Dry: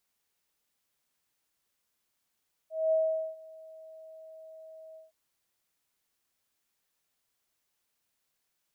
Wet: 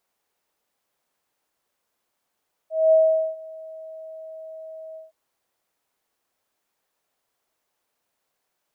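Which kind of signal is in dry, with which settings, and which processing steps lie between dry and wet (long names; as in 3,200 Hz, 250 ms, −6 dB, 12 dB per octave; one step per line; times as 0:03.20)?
note with an ADSR envelope sine 639 Hz, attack 219 ms, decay 435 ms, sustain −24 dB, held 2.26 s, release 156 ms −22 dBFS
parametric band 650 Hz +10.5 dB 2.6 octaves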